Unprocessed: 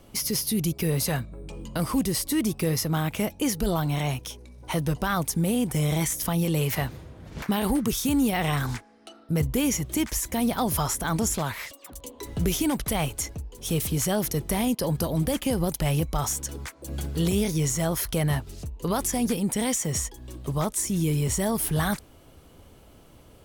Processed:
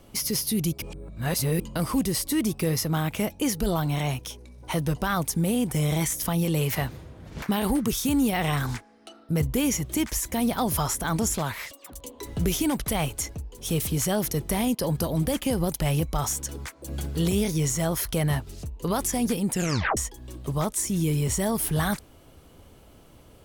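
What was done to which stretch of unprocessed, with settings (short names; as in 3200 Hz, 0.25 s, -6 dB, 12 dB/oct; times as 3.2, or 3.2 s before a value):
0.82–1.6 reverse
19.53 tape stop 0.44 s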